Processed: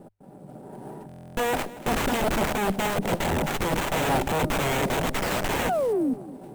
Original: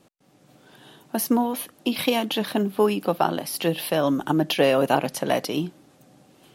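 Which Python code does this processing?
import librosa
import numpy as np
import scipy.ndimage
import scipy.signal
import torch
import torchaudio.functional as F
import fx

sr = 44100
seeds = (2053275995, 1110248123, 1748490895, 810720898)

p1 = scipy.signal.medfilt(x, 3)
p2 = fx.high_shelf(p1, sr, hz=7600.0, db=-4.0)
p3 = fx.hum_notches(p2, sr, base_hz=50, count=2)
p4 = p3 + 0.34 * np.pad(p3, (int(5.0 * sr / 1000.0), 0))[:len(p3)]
p5 = fx.over_compress(p4, sr, threshold_db=-30.0, ratio=-1.0)
p6 = p4 + (p5 * librosa.db_to_amplitude(-0.5))
p7 = fx.spec_paint(p6, sr, seeds[0], shape='fall', start_s=5.06, length_s=1.08, low_hz=240.0, high_hz=4000.0, level_db=-26.0)
p8 = (np.mod(10.0 ** (19.0 / 20.0) * p7 + 1.0, 2.0) - 1.0) / 10.0 ** (19.0 / 20.0)
p9 = fx.brickwall_bandstop(p8, sr, low_hz=1000.0, high_hz=8000.0)
p10 = p9 + fx.echo_feedback(p9, sr, ms=233, feedback_pct=29, wet_db=-18, dry=0)
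p11 = fx.buffer_glitch(p10, sr, at_s=(1.07,), block=1024, repeats=12)
p12 = fx.running_max(p11, sr, window=9)
y = p12 * librosa.db_to_amplitude(2.5)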